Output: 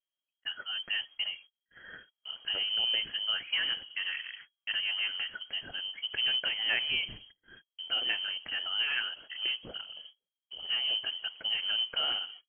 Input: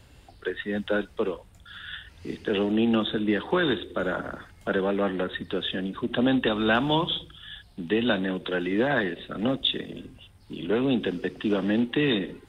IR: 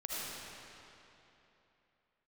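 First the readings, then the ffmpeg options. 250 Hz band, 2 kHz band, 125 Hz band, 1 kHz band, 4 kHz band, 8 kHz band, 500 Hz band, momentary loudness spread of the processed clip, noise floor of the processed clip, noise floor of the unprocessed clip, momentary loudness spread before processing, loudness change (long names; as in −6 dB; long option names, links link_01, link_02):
−34.0 dB, −3.5 dB, −26.0 dB, −15.0 dB, +4.5 dB, can't be measured, −25.5 dB, 15 LU, below −85 dBFS, −53 dBFS, 15 LU, −4.5 dB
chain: -af "agate=range=-35dB:threshold=-42dB:ratio=16:detection=peak,lowpass=frequency=2800:width_type=q:width=0.5098,lowpass=frequency=2800:width_type=q:width=0.6013,lowpass=frequency=2800:width_type=q:width=0.9,lowpass=frequency=2800:width_type=q:width=2.563,afreqshift=-3300,volume=-7.5dB"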